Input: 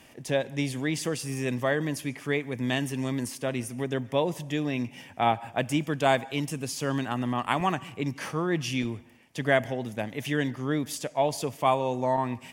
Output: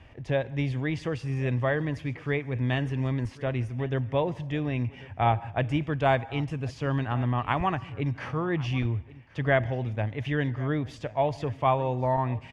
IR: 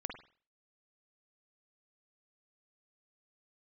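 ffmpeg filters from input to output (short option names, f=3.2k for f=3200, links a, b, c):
-af "lowpass=2.6k,lowshelf=f=130:t=q:w=1.5:g=13.5,aecho=1:1:1092:0.0944"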